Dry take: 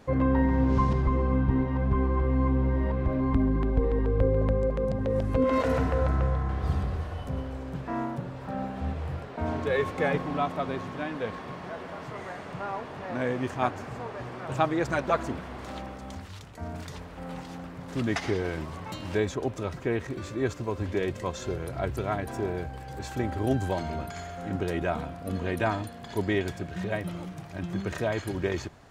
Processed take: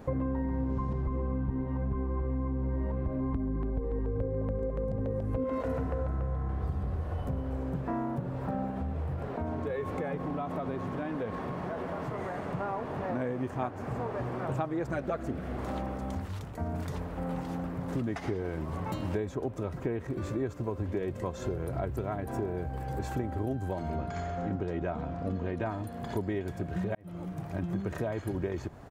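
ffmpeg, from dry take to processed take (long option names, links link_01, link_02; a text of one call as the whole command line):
ffmpeg -i in.wav -filter_complex "[0:a]asplit=2[link_01][link_02];[link_02]afade=type=in:start_time=3.73:duration=0.01,afade=type=out:start_time=4.37:duration=0.01,aecho=0:1:390|780|1170|1560|1950|2340|2730|3120|3510|3900:0.298538|0.208977|0.146284|0.102399|0.071679|0.0501753|0.0351227|0.0245859|0.0172101|0.0120471[link_03];[link_01][link_03]amix=inputs=2:normalize=0,asettb=1/sr,asplit=3[link_04][link_05][link_06];[link_04]atrim=end=8.704[link_07];[link_05]atrim=start=8.7:end=12.49,asetpts=PTS-STARTPTS,afade=type=in:duration=0.004:curve=qsin,afade=type=out:start_time=3.786:duration=0.004:curve=qsin,acompressor=threshold=-35dB:ratio=3:attack=3.2:release=140:knee=1:detection=peak[link_08];[link_06]atrim=start=12.486[link_09];[link_07][link_08]acrossfade=duration=0.004:curve1=hsin:curve2=qsin[link_10];[link_10][link_09]acrossfade=duration=0.004:curve1=qsin:curve2=hsin,asettb=1/sr,asplit=3[link_11][link_12][link_13];[link_11]atrim=end=14.934[link_14];[link_12]atrim=start=14.93:end=15.58,asetpts=PTS-STARTPTS,afade=type=in:duration=0.004:curve=qsin,afade=type=out:start_time=0.646:duration=0.004:curve=qsin,equalizer=frequency=970:width_type=o:width=0.31:gain=-12.5[link_15];[link_13]atrim=start=15.576[link_16];[link_14][link_15]acrossfade=duration=0.004:curve1=hsin:curve2=qsin[link_17];[link_17][link_16]acrossfade=duration=0.004:curve1=qsin:curve2=hsin,asettb=1/sr,asplit=3[link_18][link_19][link_20];[link_18]atrim=end=23.954[link_21];[link_19]atrim=start=23.95:end=25.66,asetpts=PTS-STARTPTS,afade=type=in:duration=0.004:curve=qsin,afade=type=out:start_time=1.706:duration=0.004:curve=qsin,lowpass=frequency=6800:width=0.5412,lowpass=frequency=6800:width=1.3066[link_22];[link_20]atrim=start=25.656[link_23];[link_21][link_22]acrossfade=duration=0.004:curve1=hsin:curve2=qsin[link_24];[link_24][link_23]acrossfade=duration=0.004:curve1=qsin:curve2=hsin,asplit=2[link_25][link_26];[link_25]atrim=end=26.95,asetpts=PTS-STARTPTS,afade=type=out:start_time=26.946:duration=0.004:curve=hsin[link_27];[link_26]atrim=start=26.95,asetpts=PTS-STARTPTS,afade=type=in:duration=0.63[link_28];[link_27][link_28]concat=n=2:v=0:a=1,equalizer=frequency=4400:width=0.37:gain=-11.5,acompressor=threshold=-36dB:ratio=6,volume=6.5dB" out.wav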